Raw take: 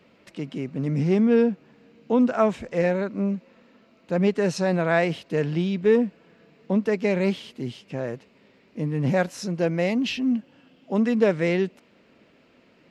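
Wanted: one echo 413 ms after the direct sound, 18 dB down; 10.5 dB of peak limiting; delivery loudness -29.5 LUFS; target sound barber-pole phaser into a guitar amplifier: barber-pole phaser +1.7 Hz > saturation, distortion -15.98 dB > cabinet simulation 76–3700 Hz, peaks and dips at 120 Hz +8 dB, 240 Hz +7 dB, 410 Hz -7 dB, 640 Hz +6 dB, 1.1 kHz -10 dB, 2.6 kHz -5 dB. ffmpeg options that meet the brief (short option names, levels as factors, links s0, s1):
-filter_complex "[0:a]alimiter=limit=0.126:level=0:latency=1,aecho=1:1:413:0.126,asplit=2[s0][s1];[s1]afreqshift=1.7[s2];[s0][s2]amix=inputs=2:normalize=1,asoftclip=threshold=0.0631,highpass=76,equalizer=f=120:t=q:w=4:g=8,equalizer=f=240:t=q:w=4:g=7,equalizer=f=410:t=q:w=4:g=-7,equalizer=f=640:t=q:w=4:g=6,equalizer=f=1100:t=q:w=4:g=-10,equalizer=f=2600:t=q:w=4:g=-5,lowpass=f=3700:w=0.5412,lowpass=f=3700:w=1.3066,volume=1.12"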